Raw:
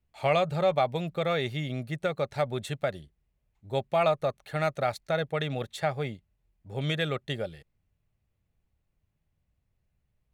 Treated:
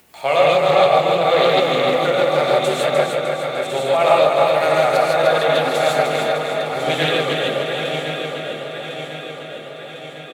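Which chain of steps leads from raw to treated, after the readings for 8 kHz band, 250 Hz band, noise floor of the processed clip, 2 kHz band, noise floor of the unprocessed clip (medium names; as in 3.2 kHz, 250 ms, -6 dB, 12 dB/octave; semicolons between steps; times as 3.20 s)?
+16.5 dB, +9.0 dB, -35 dBFS, +14.5 dB, -78 dBFS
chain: backward echo that repeats 526 ms, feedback 72%, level -7 dB; high-pass 320 Hz 12 dB/octave; treble shelf 7.9 kHz +6.5 dB; upward compressor, threshold -42 dBFS; feedback delay 302 ms, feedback 52%, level -5 dB; gated-style reverb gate 180 ms rising, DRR -3.5 dB; loudspeaker Doppler distortion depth 0.16 ms; trim +6 dB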